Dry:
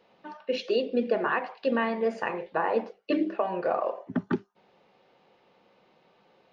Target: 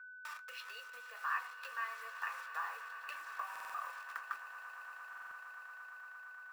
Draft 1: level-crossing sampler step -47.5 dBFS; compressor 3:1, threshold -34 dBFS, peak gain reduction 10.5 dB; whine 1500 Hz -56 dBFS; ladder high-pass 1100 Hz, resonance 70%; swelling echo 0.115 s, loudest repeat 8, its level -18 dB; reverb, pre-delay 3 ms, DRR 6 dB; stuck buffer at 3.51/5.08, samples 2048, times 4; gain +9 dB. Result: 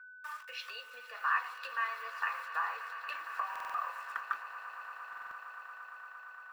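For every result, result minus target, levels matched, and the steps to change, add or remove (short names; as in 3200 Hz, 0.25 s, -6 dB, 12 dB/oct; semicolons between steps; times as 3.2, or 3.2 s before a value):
level-crossing sampler: distortion -12 dB; compressor: peak gain reduction -6 dB
change: level-crossing sampler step -37.5 dBFS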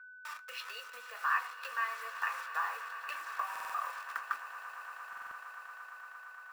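compressor: peak gain reduction -6 dB
change: compressor 3:1, threshold -43 dBFS, peak gain reduction 16.5 dB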